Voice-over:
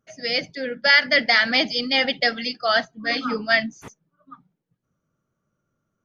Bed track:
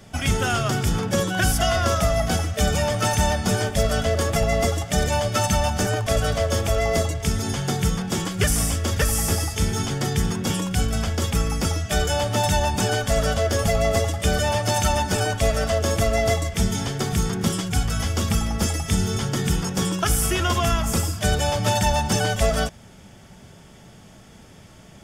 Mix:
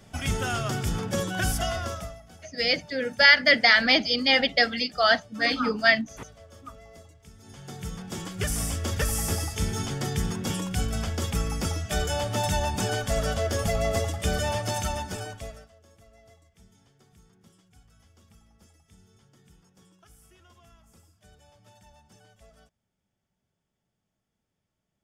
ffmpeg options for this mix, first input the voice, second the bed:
ffmpeg -i stem1.wav -i stem2.wav -filter_complex "[0:a]adelay=2350,volume=-0.5dB[link_01];[1:a]volume=16.5dB,afade=type=out:start_time=1.54:duration=0.66:silence=0.0794328,afade=type=in:start_time=7.38:duration=1.49:silence=0.0749894,afade=type=out:start_time=14.48:duration=1.21:silence=0.0316228[link_02];[link_01][link_02]amix=inputs=2:normalize=0" out.wav

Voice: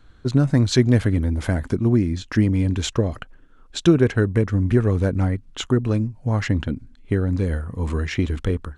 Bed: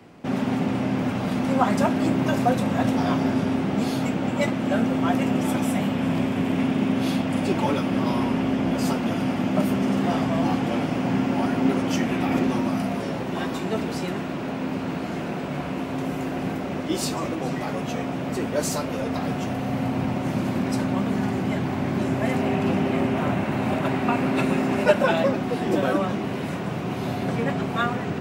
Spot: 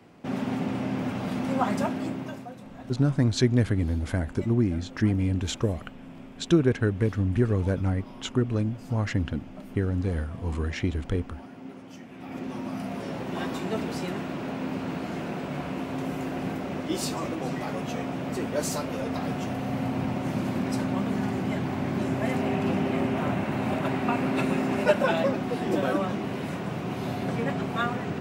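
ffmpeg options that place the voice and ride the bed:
ffmpeg -i stem1.wav -i stem2.wav -filter_complex "[0:a]adelay=2650,volume=-5.5dB[link_01];[1:a]volume=12.5dB,afade=type=out:start_time=1.72:duration=0.75:silence=0.158489,afade=type=in:start_time=12.12:duration=1.31:silence=0.133352[link_02];[link_01][link_02]amix=inputs=2:normalize=0" out.wav

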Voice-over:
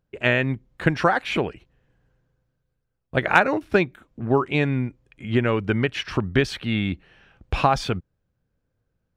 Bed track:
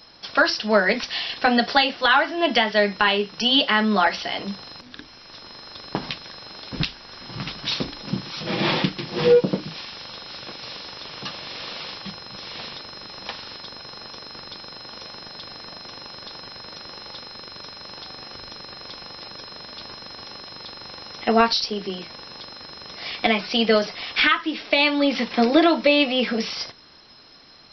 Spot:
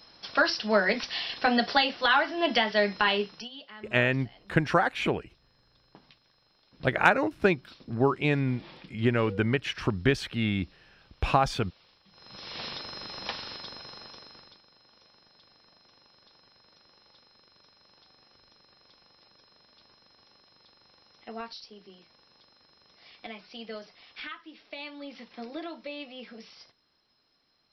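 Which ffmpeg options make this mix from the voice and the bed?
ffmpeg -i stem1.wav -i stem2.wav -filter_complex "[0:a]adelay=3700,volume=-4dB[link_01];[1:a]volume=20dB,afade=type=out:start_time=3.22:duration=0.27:silence=0.0794328,afade=type=in:start_time=12.1:duration=0.59:silence=0.0530884,afade=type=out:start_time=13.36:duration=1.26:silence=0.1[link_02];[link_01][link_02]amix=inputs=2:normalize=0" out.wav

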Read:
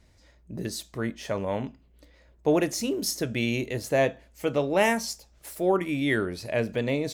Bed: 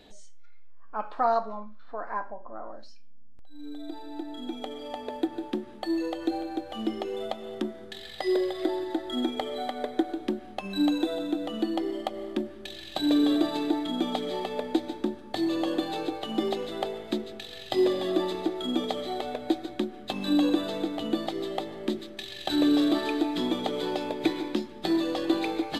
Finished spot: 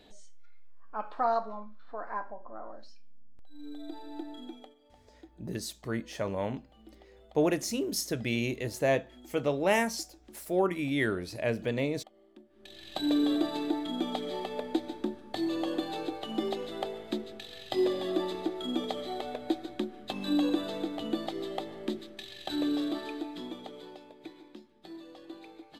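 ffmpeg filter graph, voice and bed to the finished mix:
ffmpeg -i stem1.wav -i stem2.wav -filter_complex "[0:a]adelay=4900,volume=-3.5dB[link_01];[1:a]volume=17.5dB,afade=type=out:start_time=4.24:duration=0.51:silence=0.0841395,afade=type=in:start_time=12.49:duration=0.45:silence=0.0891251,afade=type=out:start_time=21.77:duration=2.3:silence=0.149624[link_02];[link_01][link_02]amix=inputs=2:normalize=0" out.wav

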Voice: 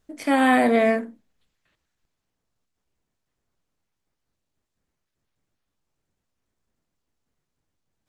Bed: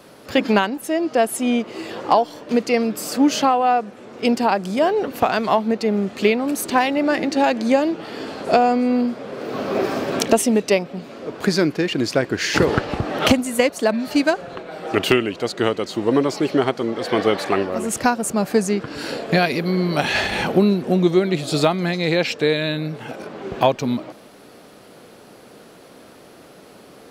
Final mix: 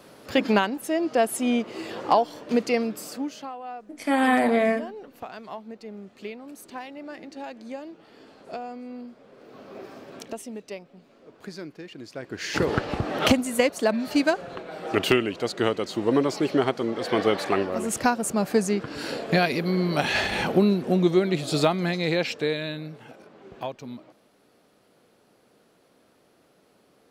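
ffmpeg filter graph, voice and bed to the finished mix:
ffmpeg -i stem1.wav -i stem2.wav -filter_complex "[0:a]adelay=3800,volume=-2.5dB[link_01];[1:a]volume=12dB,afade=type=out:start_time=2.65:duration=0.69:silence=0.158489,afade=type=in:start_time=12.14:duration=0.75:silence=0.158489,afade=type=out:start_time=21.89:duration=1.35:silence=0.237137[link_02];[link_01][link_02]amix=inputs=2:normalize=0" out.wav

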